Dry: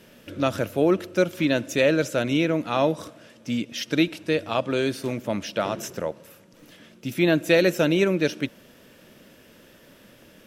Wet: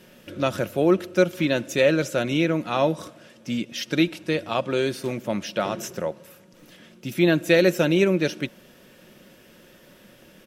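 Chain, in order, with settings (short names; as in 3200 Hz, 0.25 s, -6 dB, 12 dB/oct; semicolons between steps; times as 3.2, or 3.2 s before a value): comb 5.5 ms, depth 30%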